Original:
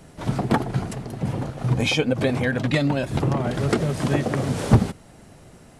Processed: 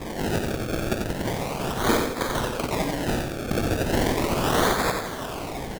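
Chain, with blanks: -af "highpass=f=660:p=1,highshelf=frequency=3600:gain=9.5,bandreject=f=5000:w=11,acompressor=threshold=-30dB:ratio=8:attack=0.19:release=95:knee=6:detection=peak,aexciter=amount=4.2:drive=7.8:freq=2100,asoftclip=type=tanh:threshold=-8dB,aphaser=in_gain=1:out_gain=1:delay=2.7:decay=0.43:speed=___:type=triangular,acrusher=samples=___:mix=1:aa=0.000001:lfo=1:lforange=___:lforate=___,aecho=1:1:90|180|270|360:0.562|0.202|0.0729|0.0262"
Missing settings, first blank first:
0.68, 30, 30, 0.36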